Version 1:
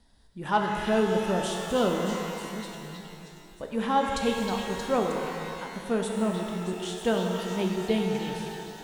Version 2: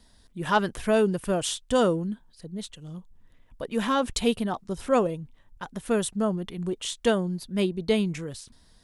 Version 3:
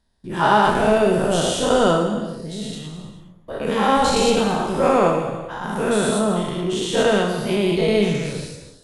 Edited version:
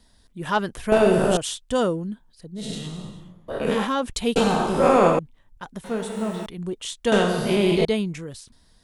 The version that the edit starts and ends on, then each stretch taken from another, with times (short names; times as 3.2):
2
0.92–1.37 from 3
2.63–3.8 from 3, crossfade 0.16 s
4.36–5.19 from 3
5.84–6.46 from 1
7.12–7.85 from 3